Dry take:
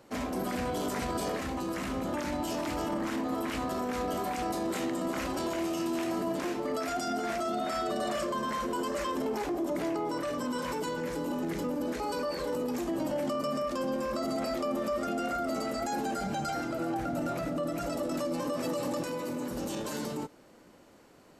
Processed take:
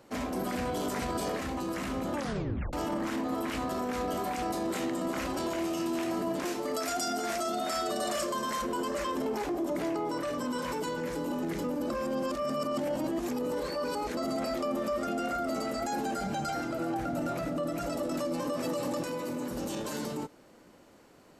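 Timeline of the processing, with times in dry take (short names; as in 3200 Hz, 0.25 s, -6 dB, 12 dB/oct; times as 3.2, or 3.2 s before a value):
2.17 tape stop 0.56 s
6.45–8.62 tone controls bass -4 dB, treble +8 dB
11.9–14.17 reverse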